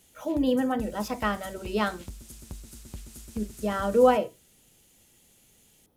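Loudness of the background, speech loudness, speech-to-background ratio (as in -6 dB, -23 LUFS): -45.0 LUFS, -27.0 LUFS, 18.0 dB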